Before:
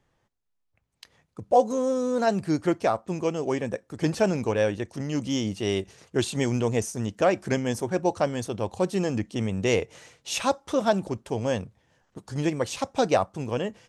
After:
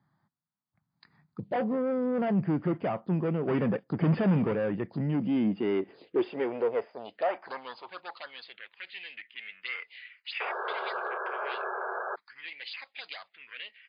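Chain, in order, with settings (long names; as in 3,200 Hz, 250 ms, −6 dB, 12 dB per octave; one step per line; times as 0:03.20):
dynamic equaliser 2,000 Hz, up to +6 dB, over −50 dBFS, Q 4.5
0:03.48–0:04.53: leveller curve on the samples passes 2
soft clipping −26 dBFS, distortion −7 dB
high-pass filter sweep 160 Hz → 2,100 Hz, 0:05.05–0:08.77
phaser swept by the level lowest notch 460 Hz, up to 4,100 Hz, full sweep at −29 dBFS
0:10.40–0:12.16: sound drawn into the spectrogram noise 360–1,700 Hz −34 dBFS
0:11.02–0:11.45: double-tracking delay 30 ms −10 dB
MP3 40 kbit/s 11,025 Hz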